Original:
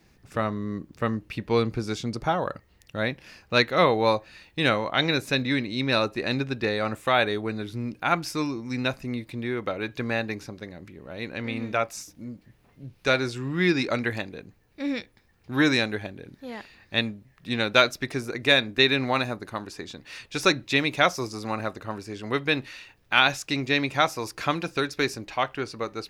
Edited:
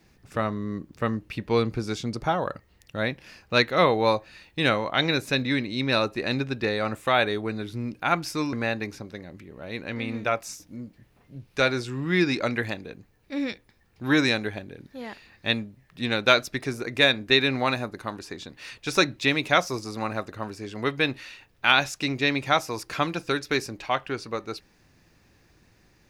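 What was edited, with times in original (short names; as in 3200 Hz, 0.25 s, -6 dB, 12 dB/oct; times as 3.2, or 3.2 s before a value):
8.53–10.01 cut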